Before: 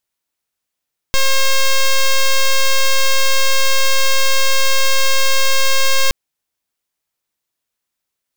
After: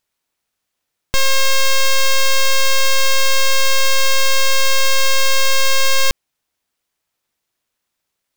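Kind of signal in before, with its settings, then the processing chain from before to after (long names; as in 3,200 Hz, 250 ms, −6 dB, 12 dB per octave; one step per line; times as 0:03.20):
pulse wave 537 Hz, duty 5% −11 dBFS 4.97 s
each half-wave held at its own peak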